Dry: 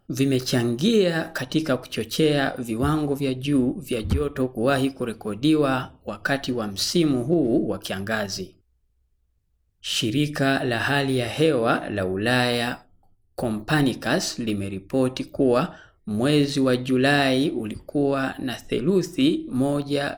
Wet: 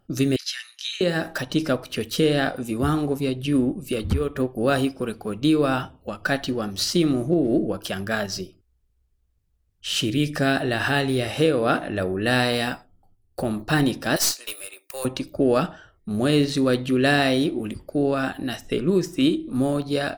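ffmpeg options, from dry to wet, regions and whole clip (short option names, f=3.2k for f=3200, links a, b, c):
-filter_complex "[0:a]asettb=1/sr,asplit=3[a][b][c];[a]atrim=end=0.364[d];[b]atrim=start=0.36:end=1.01,asetpts=PTS-STARTPTS,afade=t=in:d=0.004:c=qsin,afade=t=out:st=0.646:d=0.004:c=qsin,asuperpass=centerf=4900:order=8:qfactor=0.53,equalizer=f=8.6k:w=3.3:g=-12.5[e];[c]atrim=start=1.006[f];[d][e]acrossfade=d=0.004:c1=hsin:c2=qsin[g];[g][f]acrossfade=d=0.004:c1=qsin:c2=hsin,asettb=1/sr,asplit=3[h][i][j];[h]atrim=end=14.164[k];[i]atrim=start=14.16:end=15.05,asetpts=PTS-STARTPTS,afade=t=in:d=0.004:c=qsin,afade=t=out:st=0.886:d=0.004:c=qsin,highpass=f=510:w=0.5412,highpass=f=510:w=1.3066,aemphasis=mode=production:type=riaa,aeval=exprs='(tanh(3.55*val(0)+0.65)-tanh(0.65))/3.55':c=same[l];[j]atrim=start=15.046[m];[k][l]acrossfade=d=0.004:c1=hsin:c2=qsin[n];[n][m]acrossfade=d=0.004:c1=qsin:c2=hsin"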